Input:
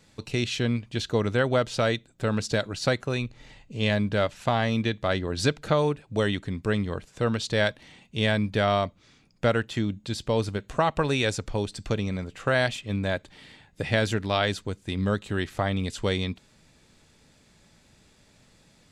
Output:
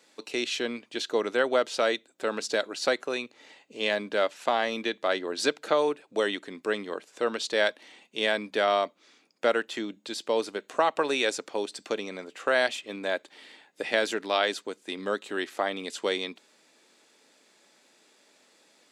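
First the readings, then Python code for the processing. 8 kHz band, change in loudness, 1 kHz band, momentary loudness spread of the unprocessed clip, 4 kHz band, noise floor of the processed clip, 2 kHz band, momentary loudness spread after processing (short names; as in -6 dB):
0.0 dB, -1.5 dB, 0.0 dB, 7 LU, 0.0 dB, -64 dBFS, 0.0 dB, 9 LU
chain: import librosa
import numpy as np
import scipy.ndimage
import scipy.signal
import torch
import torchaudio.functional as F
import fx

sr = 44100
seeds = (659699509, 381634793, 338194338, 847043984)

y = scipy.signal.sosfilt(scipy.signal.butter(4, 300.0, 'highpass', fs=sr, output='sos'), x)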